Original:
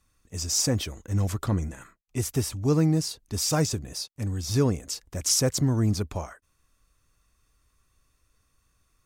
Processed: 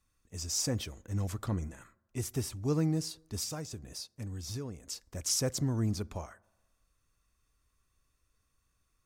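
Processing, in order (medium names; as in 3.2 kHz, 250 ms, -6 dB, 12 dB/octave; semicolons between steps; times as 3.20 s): 3.43–4.88 s: compression 6:1, threshold -29 dBFS, peak gain reduction 11 dB; on a send: reverberation RT60 1.2 s, pre-delay 5 ms, DRR 23 dB; on the sum: trim -7.5 dB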